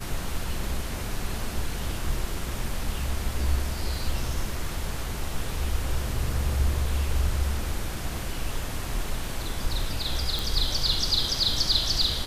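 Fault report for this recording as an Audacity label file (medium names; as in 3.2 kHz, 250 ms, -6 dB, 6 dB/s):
10.390000	10.390000	pop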